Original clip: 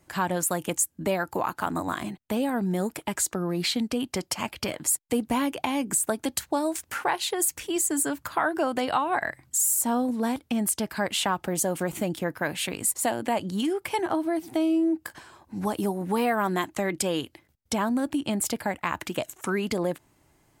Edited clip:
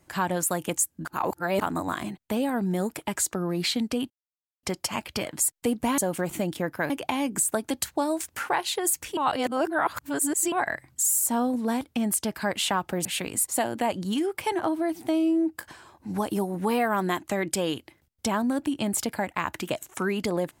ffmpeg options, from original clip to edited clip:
ffmpeg -i in.wav -filter_complex "[0:a]asplit=9[link_01][link_02][link_03][link_04][link_05][link_06][link_07][link_08][link_09];[link_01]atrim=end=1.052[link_10];[link_02]atrim=start=1.048:end=1.612,asetpts=PTS-STARTPTS,areverse[link_11];[link_03]atrim=start=1.608:end=4.1,asetpts=PTS-STARTPTS,afade=type=out:start_time=2.488:duration=0.004:curve=hsin,apad=pad_dur=0.53[link_12];[link_04]atrim=start=4.1:end=5.452,asetpts=PTS-STARTPTS,afade=type=in:duration=0.004:curve=hsin[link_13];[link_05]atrim=start=11.598:end=12.522[link_14];[link_06]atrim=start=5.448:end=7.722[link_15];[link_07]atrim=start=7.718:end=9.072,asetpts=PTS-STARTPTS,areverse[link_16];[link_08]atrim=start=9.068:end=11.602[link_17];[link_09]atrim=start=12.518[link_18];[link_10][link_11]acrossfade=duration=0.004:curve1=hsin:curve2=hsin[link_19];[link_12][link_13]concat=n=2:v=0:a=1[link_20];[link_19][link_20]acrossfade=duration=0.004:curve1=hsin:curve2=hsin[link_21];[link_21][link_14]acrossfade=duration=0.004:curve1=hsin:curve2=hsin[link_22];[link_22][link_15]acrossfade=duration=0.004:curve1=hsin:curve2=hsin[link_23];[link_23][link_16]acrossfade=duration=0.004:curve1=hsin:curve2=hsin[link_24];[link_24][link_17]acrossfade=duration=0.004:curve1=hsin:curve2=hsin[link_25];[link_25][link_18]acrossfade=duration=0.004:curve1=hsin:curve2=hsin" out.wav

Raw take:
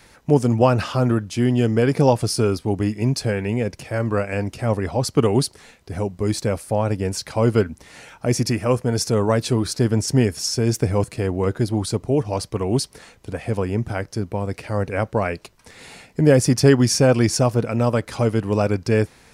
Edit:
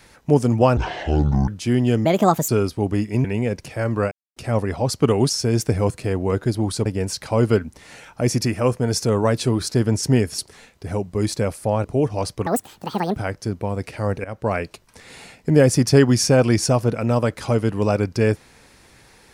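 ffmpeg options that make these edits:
ffmpeg -i in.wav -filter_complex "[0:a]asplit=15[link_01][link_02][link_03][link_04][link_05][link_06][link_07][link_08][link_09][link_10][link_11][link_12][link_13][link_14][link_15];[link_01]atrim=end=0.774[link_16];[link_02]atrim=start=0.77:end=1.19,asetpts=PTS-STARTPTS,asetrate=26019,aresample=44100,atrim=end_sample=31393,asetpts=PTS-STARTPTS[link_17];[link_03]atrim=start=1.186:end=1.764[link_18];[link_04]atrim=start=1.76:end=2.36,asetpts=PTS-STARTPTS,asetrate=61299,aresample=44100[link_19];[link_05]atrim=start=2.356:end=3.122[link_20];[link_06]atrim=start=3.388:end=4.26,asetpts=PTS-STARTPTS,afade=type=out:start_time=0.868:duration=0.004:curve=hsin[link_21];[link_07]atrim=start=4.26:end=4.51,asetpts=PTS-STARTPTS,volume=0[link_22];[link_08]atrim=start=4.51:end=5.442,asetpts=PTS-STARTPTS,afade=type=in:duration=0.004:curve=hsin[link_23];[link_09]atrim=start=10.428:end=11.992[link_24];[link_10]atrim=start=6.898:end=10.432[link_25];[link_11]atrim=start=5.438:end=6.902[link_26];[link_12]atrim=start=11.988:end=12.614[link_27];[link_13]atrim=start=12.61:end=13.87,asetpts=PTS-STARTPTS,asetrate=79380,aresample=44100[link_28];[link_14]atrim=start=13.866:end=14.95,asetpts=PTS-STARTPTS,afade=type=out:start_time=1.08:duration=0.004:curve=hsin:silence=0.112202[link_29];[link_15]atrim=start=14.95,asetpts=PTS-STARTPTS,afade=type=in:duration=0.27:silence=0.112202[link_30];[link_16][link_17]acrossfade=duration=0.004:curve1=hsin:curve2=hsin[link_31];[link_31][link_18]acrossfade=duration=0.004:curve1=hsin:curve2=hsin[link_32];[link_32][link_19]acrossfade=duration=0.004:curve1=hsin:curve2=hsin[link_33];[link_33][link_20]acrossfade=duration=0.004:curve1=hsin:curve2=hsin[link_34];[link_21][link_22][link_23]concat=n=3:v=0:a=1[link_35];[link_34][link_35]acrossfade=duration=0.004:curve1=hsin:curve2=hsin[link_36];[link_36][link_24]acrossfade=duration=0.004:curve1=hsin:curve2=hsin[link_37];[link_37][link_25]acrossfade=duration=0.004:curve1=hsin:curve2=hsin[link_38];[link_38][link_26]acrossfade=duration=0.004:curve1=hsin:curve2=hsin[link_39];[link_39][link_27]acrossfade=duration=0.004:curve1=hsin:curve2=hsin[link_40];[link_40][link_28]acrossfade=duration=0.004:curve1=hsin:curve2=hsin[link_41];[link_29][link_30]concat=n=2:v=0:a=1[link_42];[link_41][link_42]acrossfade=duration=0.004:curve1=hsin:curve2=hsin" out.wav

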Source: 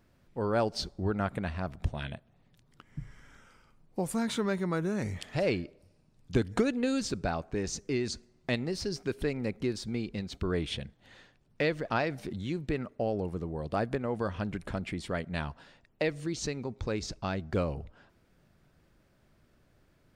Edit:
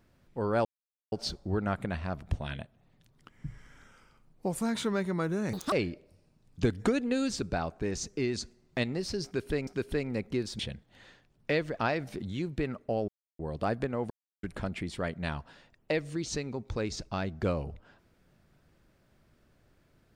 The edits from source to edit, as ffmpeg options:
ffmpeg -i in.wav -filter_complex "[0:a]asplit=10[link_01][link_02][link_03][link_04][link_05][link_06][link_07][link_08][link_09][link_10];[link_01]atrim=end=0.65,asetpts=PTS-STARTPTS,afade=type=out:start_time=0.646:duration=0.004:curve=hsin,apad=pad_dur=0.47[link_11];[link_02]atrim=start=0.65:end=5.064,asetpts=PTS-STARTPTS,afade=type=in:duration=0.004:curve=hsin[link_12];[link_03]atrim=start=5.06:end=5.44,asetpts=PTS-STARTPTS,asetrate=87318,aresample=44100[link_13];[link_04]atrim=start=5.436:end=9.392[link_14];[link_05]atrim=start=8.968:end=9.892[link_15];[link_06]atrim=start=10.698:end=13.19,asetpts=PTS-STARTPTS,afade=type=out:start_time=2.488:duration=0.004:curve=hsin[link_16];[link_07]atrim=start=13.19:end=13.5,asetpts=PTS-STARTPTS,volume=0[link_17];[link_08]atrim=start=13.5:end=14.21,asetpts=PTS-STARTPTS,afade=type=in:duration=0.004:curve=hsin,afade=type=out:start_time=0.706:duration=0.004:curve=hsin[link_18];[link_09]atrim=start=14.21:end=14.54,asetpts=PTS-STARTPTS,volume=0[link_19];[link_10]atrim=start=14.54,asetpts=PTS-STARTPTS,afade=type=in:duration=0.004:curve=hsin[link_20];[link_11][link_12]concat=n=2:v=0:a=1[link_21];[link_21][link_13]acrossfade=duration=0.004:curve1=hsin:curve2=hsin[link_22];[link_22][link_14]acrossfade=duration=0.004:curve1=hsin:curve2=hsin[link_23];[link_23][link_15]acrossfade=duration=0.004:curve1=hsin:curve2=hsin[link_24];[link_16][link_17][link_18][link_19][link_20]concat=n=5:v=0:a=1[link_25];[link_24][link_25]acrossfade=duration=0.004:curve1=hsin:curve2=hsin" out.wav

